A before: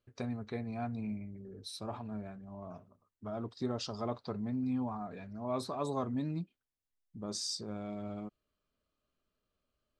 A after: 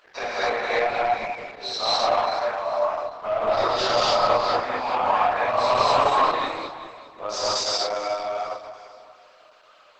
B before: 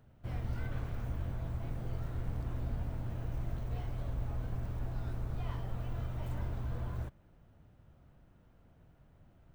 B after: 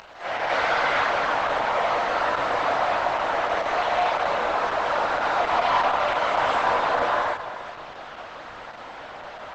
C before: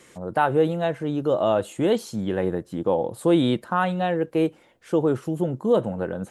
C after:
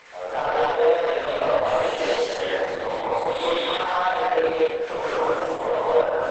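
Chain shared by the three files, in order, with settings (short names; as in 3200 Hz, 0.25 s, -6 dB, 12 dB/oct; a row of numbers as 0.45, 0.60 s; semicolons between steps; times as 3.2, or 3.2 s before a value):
spectral dilation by 60 ms; HPF 650 Hz 24 dB/oct; high shelf 3600 Hz -4 dB; notch 3200 Hz, Q 23; compressor 2:1, threshold -37 dBFS; sample leveller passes 3; upward compressor, threshold -46 dBFS; chorus 0.94 Hz, delay 18 ms, depth 5.7 ms; air absorption 140 m; on a send: echo with dull and thin repeats by turns 0.197 s, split 1200 Hz, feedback 55%, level -8 dB; on the sum: non-linear reverb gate 0.28 s rising, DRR -5.5 dB; Opus 10 kbps 48000 Hz; match loudness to -23 LUFS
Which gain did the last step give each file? +11.5, +16.5, +1.0 dB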